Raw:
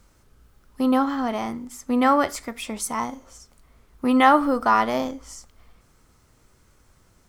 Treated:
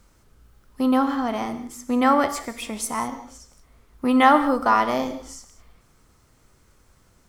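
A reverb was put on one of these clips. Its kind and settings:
reverb whose tail is shaped and stops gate 220 ms flat, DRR 10.5 dB

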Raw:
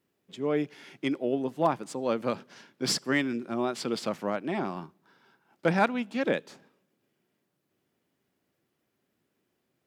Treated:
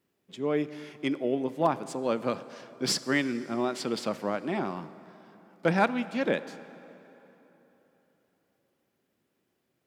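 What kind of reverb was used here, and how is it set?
dense smooth reverb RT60 3.7 s, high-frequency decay 0.7×, DRR 14.5 dB

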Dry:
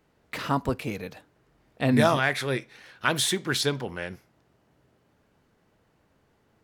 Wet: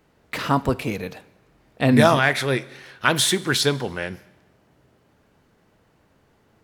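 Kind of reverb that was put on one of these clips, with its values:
four-comb reverb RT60 1.1 s, combs from 33 ms, DRR 19 dB
level +5.5 dB

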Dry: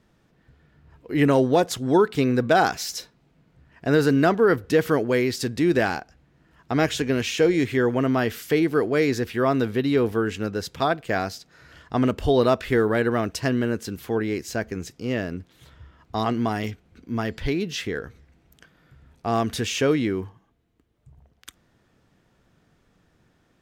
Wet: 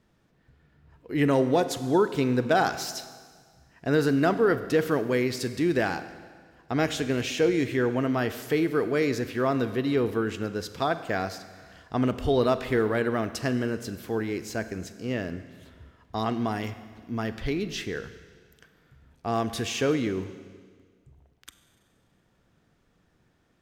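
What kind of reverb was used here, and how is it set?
four-comb reverb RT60 1.7 s, combs from 32 ms, DRR 11.5 dB
level −4 dB

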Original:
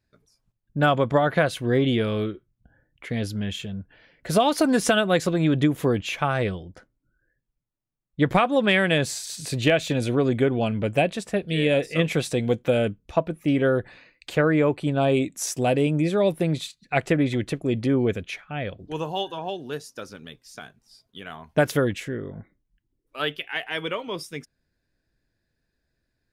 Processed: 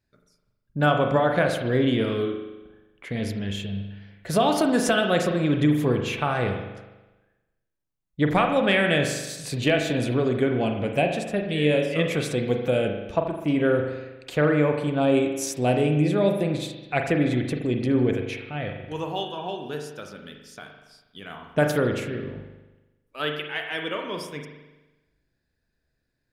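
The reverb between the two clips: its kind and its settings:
spring reverb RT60 1.1 s, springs 40 ms, chirp 40 ms, DRR 3.5 dB
level −2 dB

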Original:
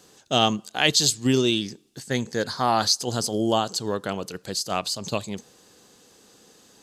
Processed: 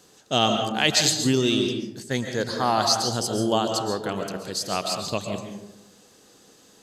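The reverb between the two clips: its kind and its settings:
comb and all-pass reverb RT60 0.95 s, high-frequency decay 0.4×, pre-delay 95 ms, DRR 4 dB
level −1 dB

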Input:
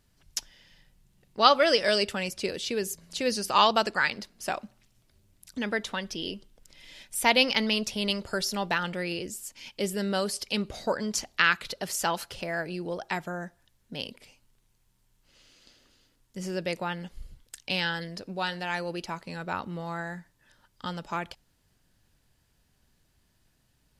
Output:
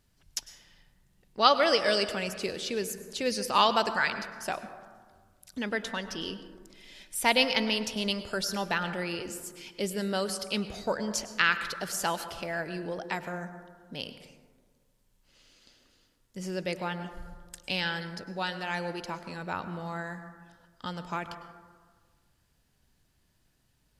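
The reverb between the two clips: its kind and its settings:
dense smooth reverb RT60 1.6 s, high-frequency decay 0.3×, pre-delay 90 ms, DRR 10.5 dB
level −2 dB

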